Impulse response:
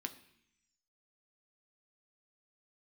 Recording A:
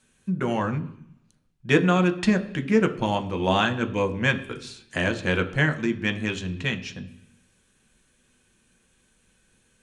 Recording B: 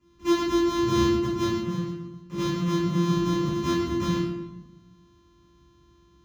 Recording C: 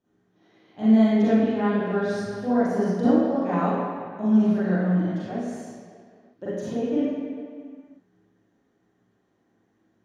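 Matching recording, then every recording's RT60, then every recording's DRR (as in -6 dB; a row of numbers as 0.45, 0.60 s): A; 0.70, 1.2, 2.1 s; 6.5, -9.5, -12.5 dB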